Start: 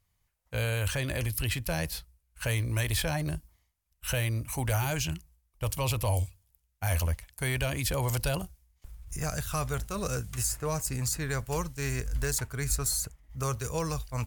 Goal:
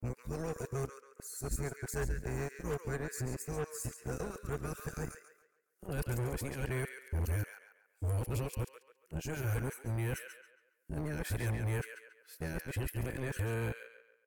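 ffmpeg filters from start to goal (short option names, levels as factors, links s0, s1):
-filter_complex "[0:a]areverse,firequalizer=gain_entry='entry(280,0);entry(450,4);entry(650,-22);entry(1500,-4);entry(3200,-19);entry(7500,-12)':delay=0.05:min_phase=1,acrossover=split=510[s0][s1];[s0]acrusher=bits=4:mix=0:aa=0.5[s2];[s1]asplit=2[s3][s4];[s4]adelay=139,lowpass=f=3900:p=1,volume=0.708,asplit=2[s5][s6];[s6]adelay=139,lowpass=f=3900:p=1,volume=0.44,asplit=2[s7][s8];[s8]adelay=139,lowpass=f=3900:p=1,volume=0.44,asplit=2[s9][s10];[s10]adelay=139,lowpass=f=3900:p=1,volume=0.44,asplit=2[s11][s12];[s12]adelay=139,lowpass=f=3900:p=1,volume=0.44,asplit=2[s13][s14];[s14]adelay=139,lowpass=f=3900:p=1,volume=0.44[s15];[s3][s5][s7][s9][s11][s13][s15]amix=inputs=7:normalize=0[s16];[s2][s16]amix=inputs=2:normalize=0,adynamicequalizer=threshold=0.00316:dfrequency=1600:dqfactor=0.7:tfrequency=1600:tqfactor=0.7:attack=5:release=100:ratio=0.375:range=3:mode=boostabove:tftype=highshelf,volume=0.501"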